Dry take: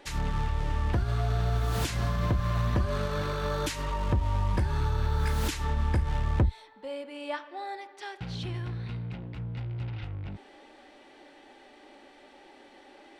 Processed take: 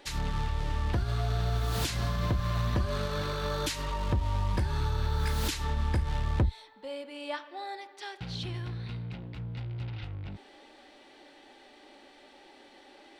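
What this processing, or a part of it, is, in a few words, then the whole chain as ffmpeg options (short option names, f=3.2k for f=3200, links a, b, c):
presence and air boost: -af "equalizer=f=4.1k:t=o:w=0.95:g=5,highshelf=f=9.4k:g=5,volume=-2dB"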